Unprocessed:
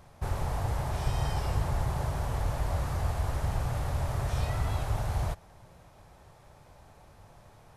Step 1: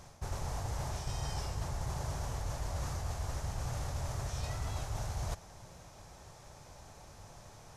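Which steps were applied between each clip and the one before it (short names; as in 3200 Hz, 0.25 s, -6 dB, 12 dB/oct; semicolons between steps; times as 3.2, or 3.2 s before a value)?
bell 6200 Hz +11.5 dB 0.94 oct; reverse; compressor 6:1, threshold -35 dBFS, peak gain reduction 12.5 dB; reverse; gain +1 dB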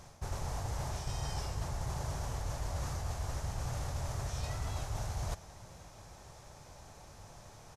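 echo 1.056 s -23.5 dB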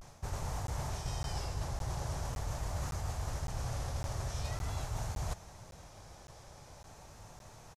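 vibrato 0.44 Hz 65 cents; crackling interface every 0.56 s, samples 512, zero, from 0.67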